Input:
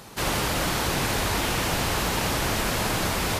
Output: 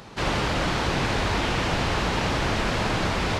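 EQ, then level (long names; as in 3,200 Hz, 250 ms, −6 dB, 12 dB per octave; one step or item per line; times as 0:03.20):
head-to-tape spacing loss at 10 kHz 29 dB
high-shelf EQ 2,600 Hz +11 dB
+2.5 dB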